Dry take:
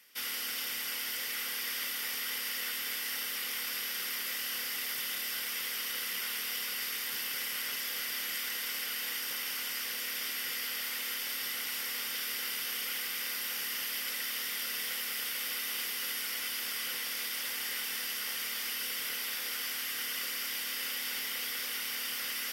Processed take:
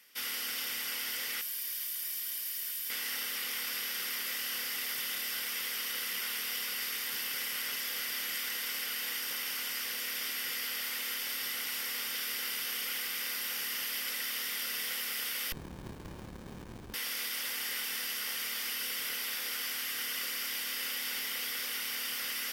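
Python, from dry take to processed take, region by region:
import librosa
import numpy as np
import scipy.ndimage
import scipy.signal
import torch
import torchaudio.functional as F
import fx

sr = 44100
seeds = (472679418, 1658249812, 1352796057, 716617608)

y = fx.chain(x, sr, fx.pre_emphasis(coefficient=0.8),
    fx.notch_comb(f0_hz=680.0), at=(1.41, 2.9))
y = fx.chain(y, sr, fx.cheby2_highpass(hz=1400.0, order=4, stop_db=70),
    fx.running_max(window=65), at=(15.52, 16.94))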